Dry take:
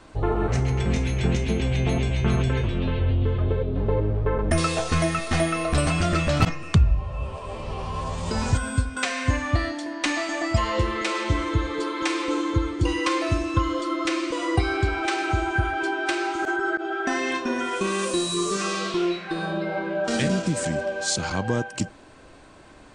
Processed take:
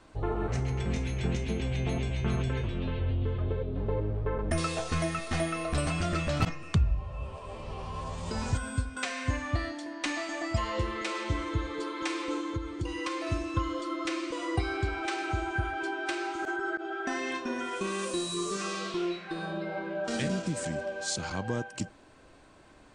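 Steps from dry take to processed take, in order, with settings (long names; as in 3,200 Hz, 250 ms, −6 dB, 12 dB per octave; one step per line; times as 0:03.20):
0:12.37–0:13.27: downward compressor 3 to 1, threshold −23 dBFS, peak gain reduction 6 dB
level −7.5 dB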